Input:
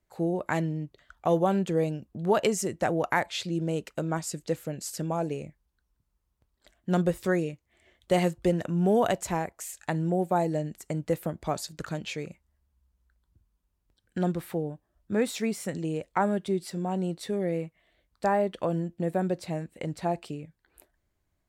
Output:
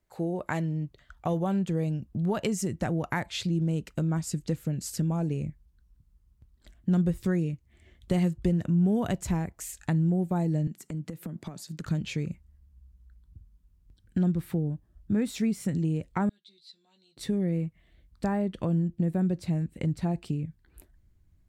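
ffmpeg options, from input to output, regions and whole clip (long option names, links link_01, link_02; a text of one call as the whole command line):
ffmpeg -i in.wav -filter_complex "[0:a]asettb=1/sr,asplit=3[link_01][link_02][link_03];[link_01]atrim=end=10.674[link_04];[link_02]atrim=start=10.67:end=11.86,asetpts=PTS-STARTPTS,afade=type=in:duration=0.004:curve=qsin,afade=type=out:start_time=1.186:duration=0.004:curve=qsin,highpass=frequency=150:width=0.5412,highpass=frequency=150:width=1.3066,acompressor=threshold=-39dB:ratio=10:attack=3.2:release=140:knee=1:detection=peak[link_05];[link_03]atrim=start=11.856[link_06];[link_04][link_05]acrossfade=duration=0.004:curve1=hsin:curve2=qsin[link_07];[link_07][link_06]acrossfade=duration=0.004:curve1=qsin:curve2=hsin,asettb=1/sr,asplit=3[link_08][link_09][link_10];[link_08]atrim=end=16.294[link_11];[link_09]atrim=start=16.29:end=17.17,asetpts=PTS-STARTPTS,afade=type=in:duration=0.004:curve=qsin,afade=type=out:start_time=0.876:duration=0.004:curve=qsin,bandpass=frequency=4000:width_type=q:width=11,asplit=2[link_12][link_13];[link_13]adelay=14,volume=-4.5dB[link_14];[link_12][link_14]amix=inputs=2:normalize=0,atrim=end_sample=38808[link_15];[link_10]atrim=start=17.166[link_16];[link_11][link_15]acrossfade=duration=0.004:curve1=hsin:curve2=qsin[link_17];[link_17][link_16]acrossfade=duration=0.004:curve1=qsin:curve2=hsin,asubboost=boost=6:cutoff=230,acompressor=threshold=-28dB:ratio=2" out.wav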